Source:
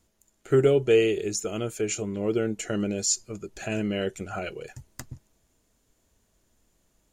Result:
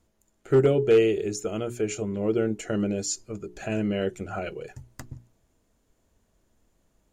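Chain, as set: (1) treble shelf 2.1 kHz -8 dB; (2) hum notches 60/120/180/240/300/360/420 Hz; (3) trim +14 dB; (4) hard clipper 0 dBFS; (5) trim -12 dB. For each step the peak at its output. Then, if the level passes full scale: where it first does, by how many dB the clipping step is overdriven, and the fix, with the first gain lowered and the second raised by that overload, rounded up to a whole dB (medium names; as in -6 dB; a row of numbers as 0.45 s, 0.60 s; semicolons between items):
-10.0 dBFS, -10.5 dBFS, +3.5 dBFS, 0.0 dBFS, -12.0 dBFS; step 3, 3.5 dB; step 3 +10 dB, step 5 -8 dB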